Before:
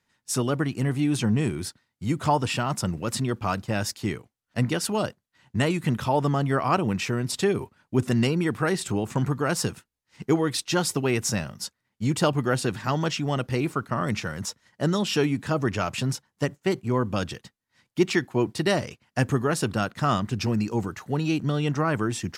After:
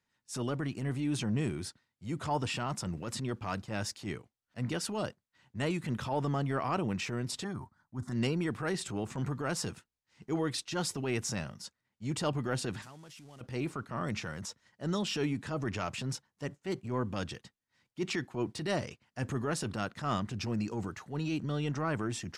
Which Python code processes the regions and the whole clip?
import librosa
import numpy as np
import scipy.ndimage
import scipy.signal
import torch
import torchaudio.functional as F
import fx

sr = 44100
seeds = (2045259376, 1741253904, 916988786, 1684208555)

y = fx.chain(x, sr, fx.high_shelf(hz=6600.0, db=-7.0),
    fx.fixed_phaser(hz=1100.0, stages=4), at=(7.44, 8.13))
y = fx.chain(y, sr, fx.crossing_spikes(level_db=-19.5),
    fx.lowpass(hz=11000.0, slope=12),
    fx.level_steps(step_db=22), at=(12.82, 13.41))
y = scipy.signal.sosfilt(scipy.signal.butter(2, 9700.0, 'lowpass', fs=sr, output='sos'), y)
y = fx.transient(y, sr, attack_db=-8, sustain_db=2)
y = F.gain(torch.from_numpy(y), -7.5).numpy()